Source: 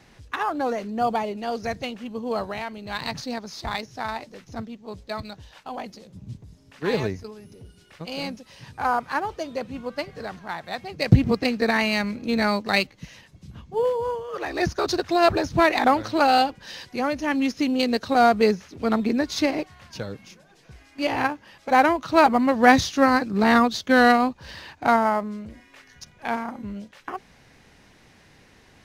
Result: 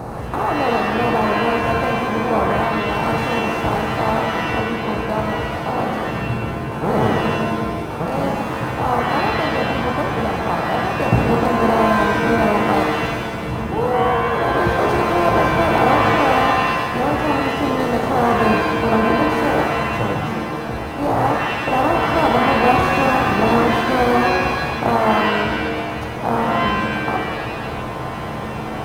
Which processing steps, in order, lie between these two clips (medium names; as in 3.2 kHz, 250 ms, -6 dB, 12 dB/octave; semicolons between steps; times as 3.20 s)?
spectral levelling over time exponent 0.4; high-order bell 3.2 kHz -16 dB 2.3 oct; pitch-shifted reverb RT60 1.2 s, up +7 st, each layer -2 dB, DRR 1.5 dB; trim -5.5 dB